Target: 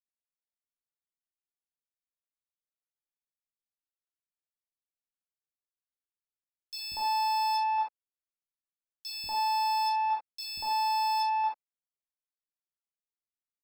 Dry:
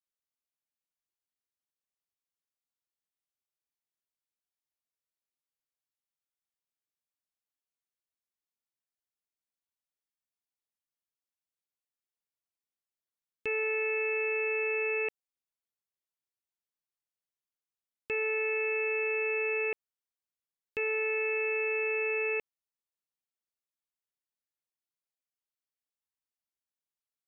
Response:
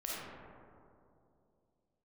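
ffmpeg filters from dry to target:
-filter_complex "[0:a]aeval=exprs='0.0562*(cos(1*acos(clip(val(0)/0.0562,-1,1)))-cos(1*PI/2))+0.000708*(cos(3*acos(clip(val(0)/0.0562,-1,1)))-cos(3*PI/2))+0.00355*(cos(5*acos(clip(val(0)/0.0562,-1,1)))-cos(5*PI/2))+0.00891*(cos(7*acos(clip(val(0)/0.0562,-1,1)))-cos(7*PI/2))':c=same,lowshelf=f=210:g=10.5,acrossover=split=150|1400[a][b][c];[a]adelay=380[d];[b]adelay=480[e];[d][e][c]amix=inputs=3:normalize=0[f];[1:a]atrim=start_sample=2205,afade=t=out:st=0.25:d=0.01,atrim=end_sample=11466[g];[f][g]afir=irnorm=-1:irlink=0,asetrate=88200,aresample=44100"

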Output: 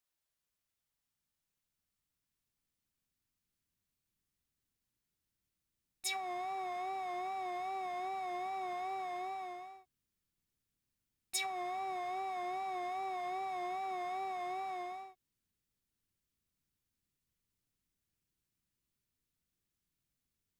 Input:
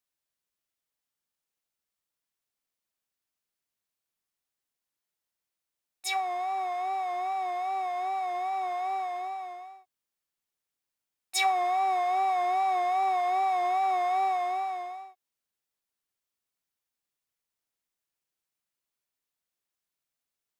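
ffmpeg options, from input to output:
-af "acompressor=threshold=-32dB:ratio=10,asubboost=boost=8:cutoff=230,volume=-1dB"

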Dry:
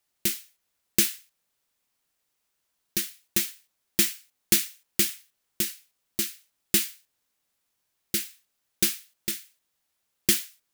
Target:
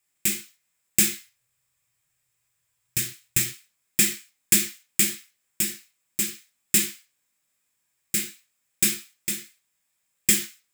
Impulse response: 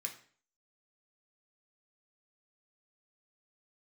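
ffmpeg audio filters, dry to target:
-filter_complex "[0:a]asettb=1/sr,asplit=3[a][b][c];[a]atrim=end=1.124[d];[b]atrim=start=1.12:end=3.48,asetpts=PTS-STARTPTS,afade=t=in:d=0.004:c=qsin,afade=t=out:st=2.356:d=0.004:c=qsin,lowshelf=f=160:t=q:w=3:g=8[e];[c]atrim=start=3.476[f];[d][e]acrossfade=d=0.004:c1=hsin:c2=qsin[g];[g][f]acrossfade=d=0.004:c1=qsin:c2=hsin[h];[1:a]atrim=start_sample=2205,afade=t=out:st=0.2:d=0.01,atrim=end_sample=9261[i];[h][i]afir=irnorm=-1:irlink=0,volume=3.5dB"

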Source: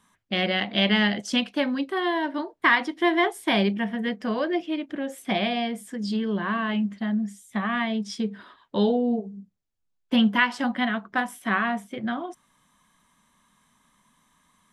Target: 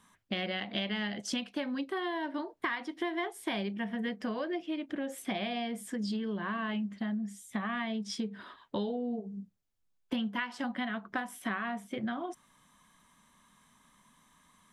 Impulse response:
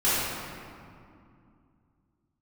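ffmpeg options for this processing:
-af "acompressor=threshold=-32dB:ratio=6"

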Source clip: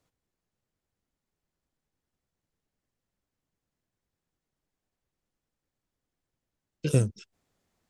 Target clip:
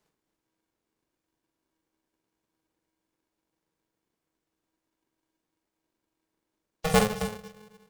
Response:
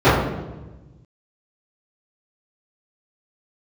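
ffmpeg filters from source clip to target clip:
-filter_complex "[0:a]aecho=1:1:43.73|271.1:0.501|0.316,asplit=2[a][b];[1:a]atrim=start_sample=2205[c];[b][c]afir=irnorm=-1:irlink=0,volume=-49dB[d];[a][d]amix=inputs=2:normalize=0,aeval=exprs='val(0)*sgn(sin(2*PI*320*n/s))':c=same"

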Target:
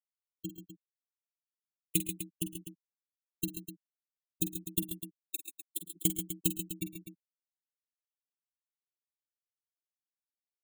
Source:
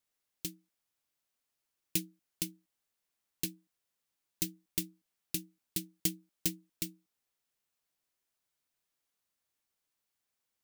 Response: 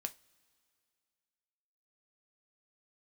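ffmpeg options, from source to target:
-filter_complex "[0:a]asettb=1/sr,asplit=3[a][b][c];[a]atrim=end=4.854[d];[b]atrim=start=4.85:end=5.82,asetpts=PTS-STARTPTS,afade=t=in:d=0.004:c=qsin,afade=t=out:st=0.966:d=0.004:c=qsin,highpass=f=440:w=0.5412,highpass=f=440:w=1.3066[e];[c]atrim=start=5.816[f];[d][e]acrossfade=d=0.004:c1=hsin:c2=qsin[g];[g][f]acrossfade=d=0.004:c1=qsin:c2=hsin,afftfilt=real='re*gte(hypot(re,im),0.0282)':imag='im*gte(hypot(re,im),0.0282)':win_size=1024:overlap=0.75,asuperstop=centerf=5200:order=8:qfactor=2,aecho=1:1:48|111|132|135|146|251:0.251|0.106|0.106|0.355|0.133|0.266,volume=4.5dB"

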